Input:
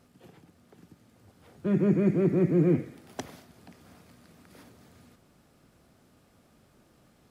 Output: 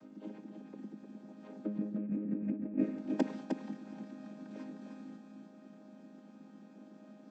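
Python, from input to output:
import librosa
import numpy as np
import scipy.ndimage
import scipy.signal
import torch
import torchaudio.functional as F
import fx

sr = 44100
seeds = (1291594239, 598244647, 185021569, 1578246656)

p1 = fx.chord_vocoder(x, sr, chord='major triad', root=56)
p2 = fx.low_shelf(p1, sr, hz=400.0, db=5.5)
p3 = fx.over_compress(p2, sr, threshold_db=-33.0, ratio=-1.0)
p4 = p3 + fx.echo_single(p3, sr, ms=307, db=-5.0, dry=0)
y = F.gain(torch.from_numpy(p4), -2.5).numpy()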